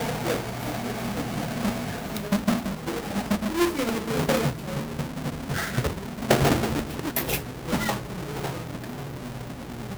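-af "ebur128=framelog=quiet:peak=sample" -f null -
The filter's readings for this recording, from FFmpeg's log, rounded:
Integrated loudness:
  I:         -27.9 LUFS
  Threshold: -37.9 LUFS
Loudness range:
  LRA:         2.5 LU
  Threshold: -47.2 LUFS
  LRA low:   -28.8 LUFS
  LRA high:  -26.2 LUFS
Sample peak:
  Peak:       -8.9 dBFS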